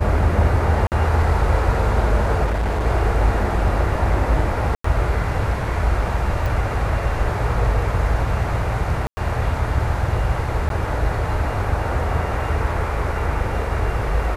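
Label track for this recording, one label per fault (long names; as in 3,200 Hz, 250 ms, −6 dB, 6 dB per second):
0.870000	0.920000	drop-out 48 ms
2.440000	2.860000	clipping −17.5 dBFS
4.750000	4.840000	drop-out 94 ms
6.460000	6.460000	click
9.070000	9.170000	drop-out 100 ms
10.690000	10.700000	drop-out 12 ms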